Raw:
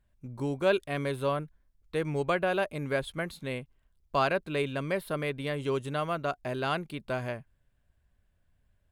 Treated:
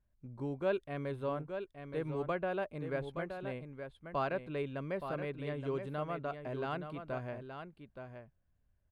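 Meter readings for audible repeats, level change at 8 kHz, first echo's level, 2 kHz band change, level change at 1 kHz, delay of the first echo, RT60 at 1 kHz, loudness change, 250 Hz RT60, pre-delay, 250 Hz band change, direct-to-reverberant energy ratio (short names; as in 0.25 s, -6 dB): 1, under -20 dB, -8.0 dB, -10.0 dB, -7.5 dB, 0.872 s, none, -7.5 dB, none, none, -6.0 dB, none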